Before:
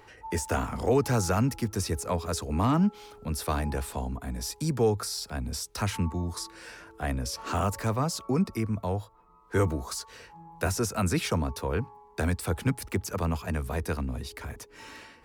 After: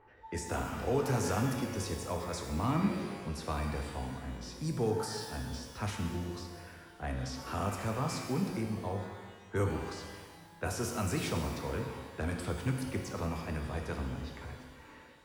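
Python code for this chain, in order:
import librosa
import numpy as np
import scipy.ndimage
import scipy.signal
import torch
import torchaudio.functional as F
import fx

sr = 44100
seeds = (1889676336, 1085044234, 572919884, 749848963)

y = fx.env_lowpass(x, sr, base_hz=1500.0, full_db=-23.5)
y = fx.rev_shimmer(y, sr, seeds[0], rt60_s=1.5, semitones=12, shimmer_db=-8, drr_db=2.5)
y = y * 10.0 ** (-8.0 / 20.0)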